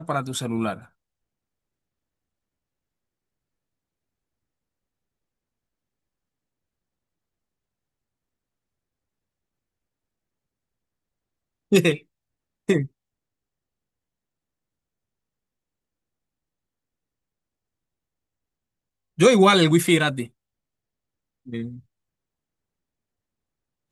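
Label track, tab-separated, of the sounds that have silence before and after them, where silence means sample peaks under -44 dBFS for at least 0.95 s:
11.720000	12.870000	sound
19.180000	20.280000	sound
21.470000	21.800000	sound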